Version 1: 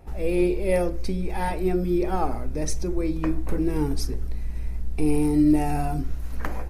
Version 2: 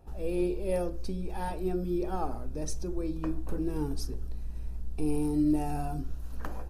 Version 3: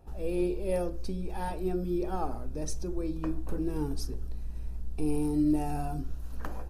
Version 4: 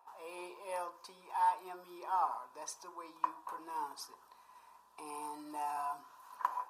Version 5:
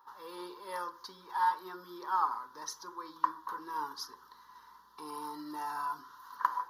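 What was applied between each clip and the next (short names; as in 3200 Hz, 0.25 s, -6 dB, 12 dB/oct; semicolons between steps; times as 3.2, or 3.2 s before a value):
bell 2100 Hz -14 dB 0.28 oct; gain -7.5 dB
nothing audible
resonant high-pass 1000 Hz, resonance Q 12; gain -4.5 dB
fixed phaser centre 2500 Hz, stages 6; gain +8 dB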